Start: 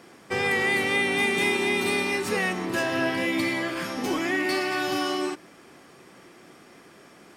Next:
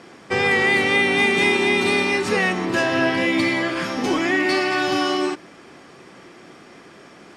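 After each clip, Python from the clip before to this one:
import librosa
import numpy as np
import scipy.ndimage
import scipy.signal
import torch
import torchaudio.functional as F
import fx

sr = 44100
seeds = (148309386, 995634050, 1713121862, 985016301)

y = scipy.signal.sosfilt(scipy.signal.butter(2, 6900.0, 'lowpass', fs=sr, output='sos'), x)
y = F.gain(torch.from_numpy(y), 6.0).numpy()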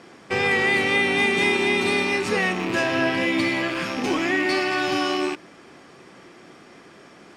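y = fx.rattle_buzz(x, sr, strikes_db=-40.0, level_db=-19.0)
y = F.gain(torch.from_numpy(y), -2.5).numpy()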